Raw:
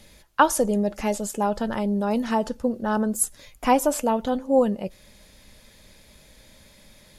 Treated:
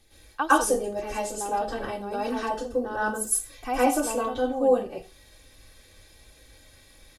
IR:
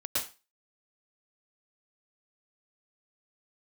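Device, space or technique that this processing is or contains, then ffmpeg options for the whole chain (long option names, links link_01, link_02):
microphone above a desk: -filter_complex "[0:a]aecho=1:1:2.6:0.62[link_01];[1:a]atrim=start_sample=2205[link_02];[link_01][link_02]afir=irnorm=-1:irlink=0,volume=-8.5dB"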